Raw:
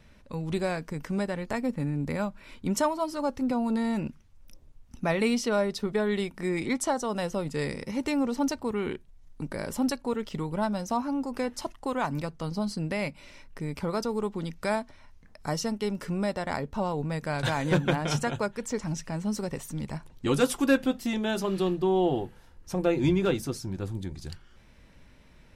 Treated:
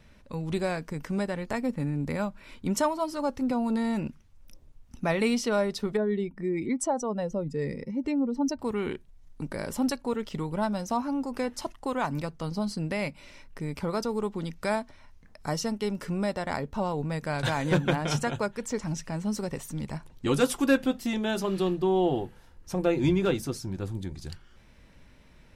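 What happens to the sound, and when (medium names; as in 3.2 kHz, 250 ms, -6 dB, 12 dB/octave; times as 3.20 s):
5.97–8.59 s: spectral contrast enhancement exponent 1.6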